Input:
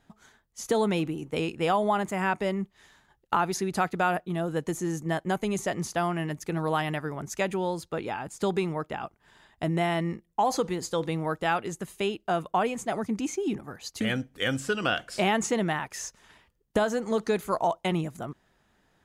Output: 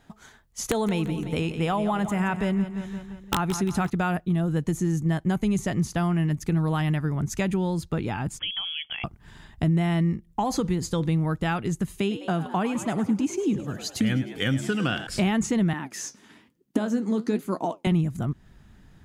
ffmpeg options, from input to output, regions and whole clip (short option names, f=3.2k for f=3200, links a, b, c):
-filter_complex "[0:a]asettb=1/sr,asplit=3[a][b][c];[a]atrim=end=0.694[d];[b]atrim=start=0.69:end=3.9,asetpts=PTS-STARTPTS,afade=t=in:d=0.004:c=qsin,afade=t=out:st=3.206:d=0.004:c=qsin,aeval=exprs='(mod(4.73*val(0)+1,2)-1)/4.73':c=same,bandreject=f=4.7k:w=8.8,aecho=1:1:172|344|516|688|860:0.251|0.126|0.0628|0.0314|0.0157,atrim=end_sample=141561[e];[c]atrim=start=3.896[f];[d][e]acrossfade=d=0.004:c1=hsin:c2=qsin[g];[g][f]acrossfade=d=0.004:c1=qsin:c2=hsin,asettb=1/sr,asplit=3[h][i][j];[h]atrim=end=8.394[k];[i]atrim=start=8.39:end=9.04,asetpts=PTS-STARTPTS,afade=t=in:d=0.004:c=qsin,afade=t=out:st=0.646:d=0.004:c=qsin,acompressor=threshold=-39dB:ratio=2:attack=3.2:release=140:knee=1:detection=peak,lowpass=f=3k:t=q:w=0.5098,lowpass=f=3k:t=q:w=0.6013,lowpass=f=3k:t=q:w=0.9,lowpass=f=3k:t=q:w=2.563,afreqshift=-3500[l];[j]atrim=start=9.036[m];[k][l]acrossfade=d=0.004:c1=hsin:c2=qsin[n];[n][m]acrossfade=d=0.004:c1=qsin:c2=hsin,asettb=1/sr,asplit=3[o][p][q];[o]atrim=end=11.994[r];[p]atrim=start=11.99:end=15.07,asetpts=PTS-STARTPTS,afade=t=in:d=0.004:c=qsin,afade=t=out:st=3.076:d=0.004:c=qsin,highpass=120,asplit=7[s][t][u][v][w][x][y];[t]adelay=103,afreqshift=80,volume=-13dB[z];[u]adelay=206,afreqshift=160,volume=-17.9dB[aa];[v]adelay=309,afreqshift=240,volume=-22.8dB[ab];[w]adelay=412,afreqshift=320,volume=-27.6dB[ac];[x]adelay=515,afreqshift=400,volume=-32.5dB[ad];[y]adelay=618,afreqshift=480,volume=-37.4dB[ae];[s][z][aa][ab][ac][ad][ae]amix=inputs=7:normalize=0,atrim=end_sample=135828[af];[q]atrim=start=15.066[ag];[r][af]acrossfade=d=0.004:c1=hsin:c2=qsin[ah];[ah][ag]acrossfade=d=0.004:c1=qsin:c2=hsin,asettb=1/sr,asplit=3[ai][aj][ak];[ai]atrim=end=15.734[al];[aj]atrim=start=15.73:end=17.87,asetpts=PTS-STARTPTS,afade=t=in:d=0.004:c=qsin,afade=t=out:st=2.136:d=0.004:c=qsin,flanger=delay=5.4:depth=9.6:regen=60:speed=1.1:shape=sinusoidal,highpass=f=270:t=q:w=2.8[am];[ak]atrim=start=17.866[an];[al][am]acrossfade=d=0.004:c1=hsin:c2=qsin[ao];[ao][an]acrossfade=d=0.004:c1=qsin:c2=hsin,asubboost=boost=5.5:cutoff=220,acompressor=threshold=-34dB:ratio=2,volume=6.5dB"